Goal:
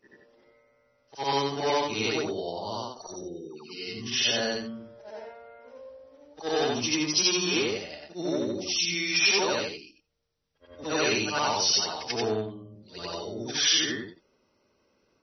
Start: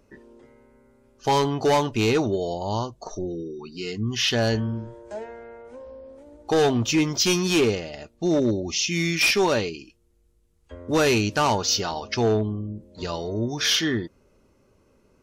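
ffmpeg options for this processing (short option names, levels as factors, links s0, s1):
-af "afftfilt=real='re':imag='-im':win_size=8192:overlap=0.75,aemphasis=mode=production:type=bsi" -ar 24000 -c:a libmp3lame -b:a 24k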